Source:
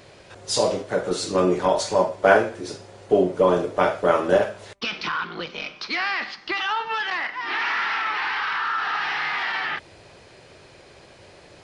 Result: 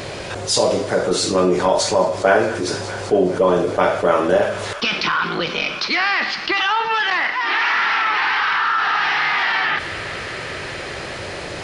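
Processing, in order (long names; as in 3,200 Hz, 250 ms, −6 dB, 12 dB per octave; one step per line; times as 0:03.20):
0:07.32–0:07.74: parametric band 140 Hz −12 dB 1.3 octaves
delay with a high-pass on its return 207 ms, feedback 85%, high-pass 1,500 Hz, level −22 dB
envelope flattener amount 50%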